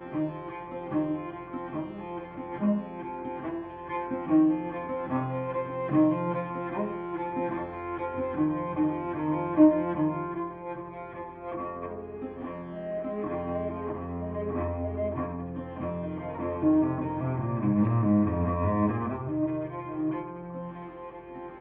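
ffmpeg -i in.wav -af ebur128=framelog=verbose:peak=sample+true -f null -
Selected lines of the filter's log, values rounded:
Integrated loudness:
  I:         -30.0 LUFS
  Threshold: -40.1 LUFS
Loudness range:
  LRA:         7.1 LU
  Threshold: -49.8 LUFS
  LRA low:   -34.4 LUFS
  LRA high:  -27.3 LUFS
Sample peak:
  Peak:       -9.2 dBFS
True peak:
  Peak:       -9.2 dBFS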